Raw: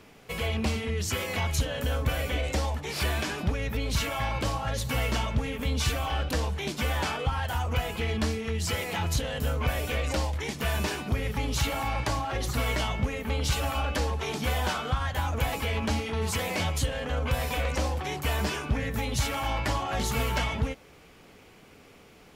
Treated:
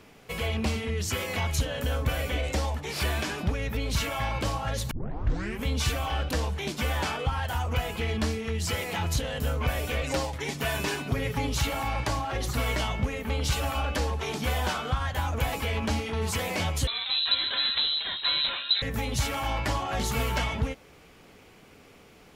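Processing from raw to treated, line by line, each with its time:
4.91 s: tape start 0.73 s
10.01–11.49 s: comb 7.3 ms, depth 57%
16.87–18.82 s: frequency inversion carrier 4 kHz

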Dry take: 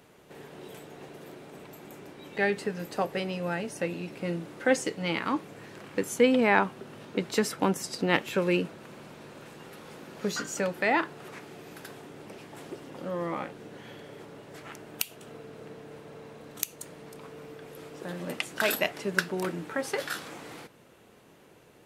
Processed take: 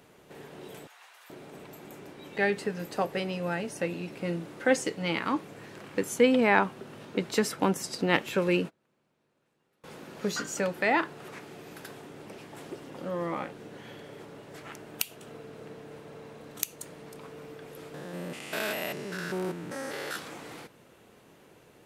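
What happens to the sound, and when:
0.87–1.30 s: high-pass 950 Hz 24 dB/octave
8.48–9.84 s: gate -41 dBFS, range -28 dB
17.94–20.16 s: spectrogram pixelated in time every 200 ms

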